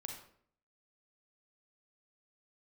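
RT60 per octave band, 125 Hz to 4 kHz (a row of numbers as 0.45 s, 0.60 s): 0.70 s, 0.70 s, 0.65 s, 0.55 s, 0.50 s, 0.40 s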